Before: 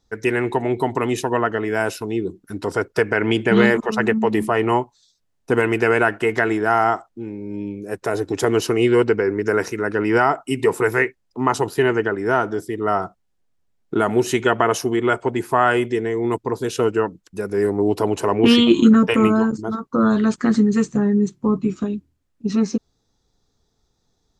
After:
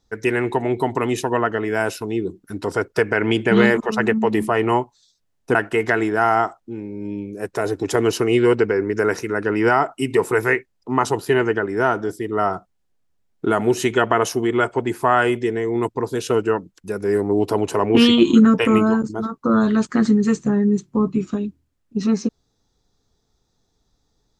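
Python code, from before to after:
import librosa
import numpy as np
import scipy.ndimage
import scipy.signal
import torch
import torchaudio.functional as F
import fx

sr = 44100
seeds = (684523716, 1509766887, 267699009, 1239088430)

y = fx.edit(x, sr, fx.cut(start_s=5.55, length_s=0.49), tone=tone)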